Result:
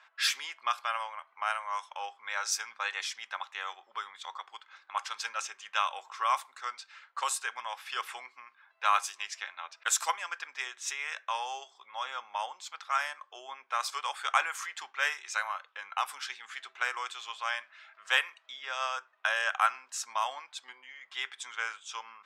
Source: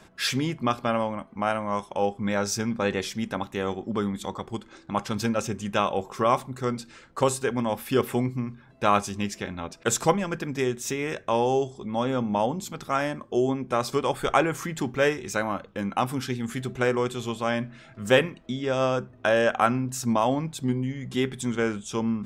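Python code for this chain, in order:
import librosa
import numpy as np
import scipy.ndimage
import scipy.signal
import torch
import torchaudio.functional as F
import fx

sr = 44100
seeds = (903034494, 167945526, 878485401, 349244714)

y = scipy.signal.sosfilt(scipy.signal.butter(4, 1000.0, 'highpass', fs=sr, output='sos'), x)
y = fx.env_lowpass(y, sr, base_hz=2900.0, full_db=-26.0)
y = y * 10.0 ** (-1.0 / 20.0)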